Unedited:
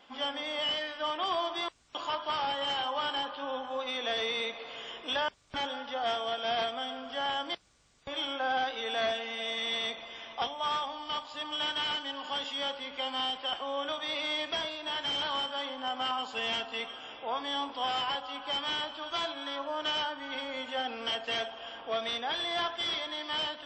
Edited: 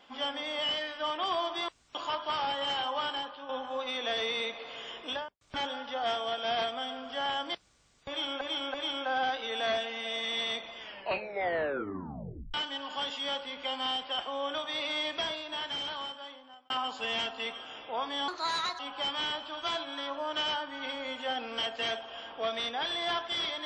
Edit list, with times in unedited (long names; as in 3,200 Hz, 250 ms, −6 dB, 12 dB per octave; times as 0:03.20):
0:02.99–0:03.49: fade out, to −8.5 dB
0:05.03–0:05.41: fade out and dull
0:08.08–0:08.41: repeat, 3 plays
0:10.11: tape stop 1.77 s
0:14.70–0:16.04: fade out
0:17.62–0:18.28: play speed 129%